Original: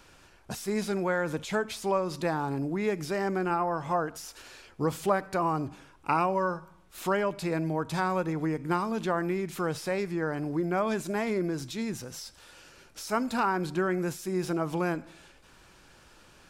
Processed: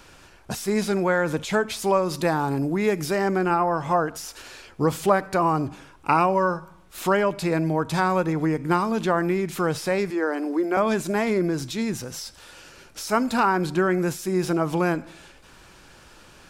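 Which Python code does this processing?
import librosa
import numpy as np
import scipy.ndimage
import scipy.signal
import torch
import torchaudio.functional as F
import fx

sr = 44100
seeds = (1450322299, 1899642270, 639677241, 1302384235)

y = fx.high_shelf(x, sr, hz=10000.0, db=8.5, at=(1.79, 3.15))
y = fx.steep_highpass(y, sr, hz=210.0, slope=72, at=(10.1, 10.77))
y = y * 10.0 ** (6.5 / 20.0)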